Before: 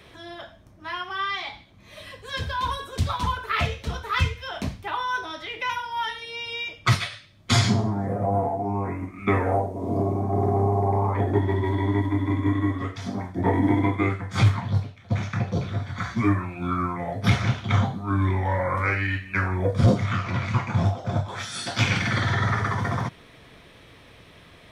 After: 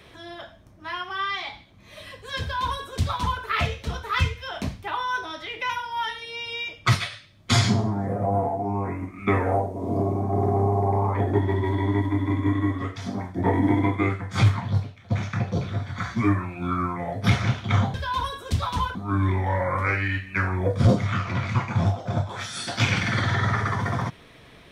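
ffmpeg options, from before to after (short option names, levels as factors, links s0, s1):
-filter_complex "[0:a]asplit=3[s0][s1][s2];[s0]atrim=end=17.942[s3];[s1]atrim=start=2.408:end=3.422[s4];[s2]atrim=start=17.938[s5];[s3][s4]acrossfade=d=0.004:c1=hsin:c2=hsin[s6];[s6][s5]acrossfade=d=0.004:c1=hsin:c2=hsin"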